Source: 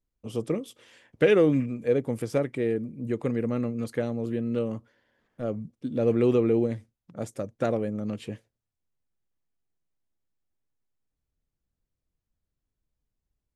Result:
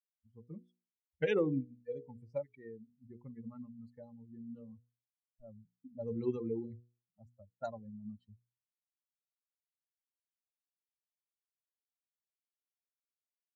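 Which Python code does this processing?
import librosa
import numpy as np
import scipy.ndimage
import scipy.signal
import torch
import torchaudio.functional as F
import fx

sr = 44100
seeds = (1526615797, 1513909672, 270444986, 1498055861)

y = fx.bin_expand(x, sr, power=3.0)
y = fx.env_lowpass(y, sr, base_hz=640.0, full_db=-27.0)
y = fx.hum_notches(y, sr, base_hz=60, count=8)
y = y * 10.0 ** (-6.5 / 20.0)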